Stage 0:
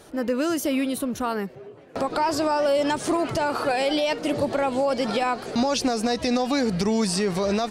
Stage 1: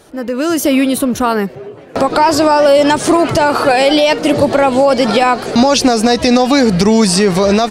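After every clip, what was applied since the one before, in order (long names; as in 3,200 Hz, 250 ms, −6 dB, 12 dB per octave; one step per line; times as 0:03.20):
automatic gain control gain up to 9 dB
level +4 dB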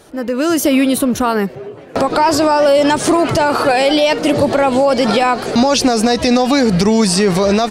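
brickwall limiter −4.5 dBFS, peak gain reduction 3 dB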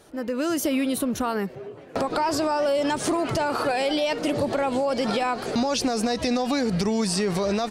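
downward compressor 2 to 1, threshold −14 dBFS, peak gain reduction 3.5 dB
level −8.5 dB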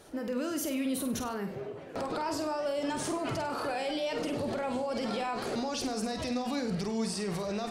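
brickwall limiter −25 dBFS, peak gain reduction 10.5 dB
on a send: flutter between parallel walls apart 8.4 metres, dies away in 0.4 s
on the sum: level −1.5 dB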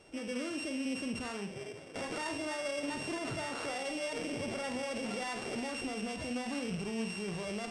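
samples sorted by size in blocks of 16 samples
downsampling to 22,050 Hz
level −4.5 dB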